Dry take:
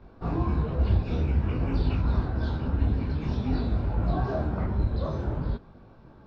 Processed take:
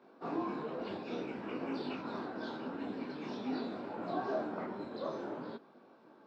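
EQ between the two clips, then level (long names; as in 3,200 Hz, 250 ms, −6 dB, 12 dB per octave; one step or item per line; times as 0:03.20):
high-pass filter 250 Hz 24 dB per octave
−4.0 dB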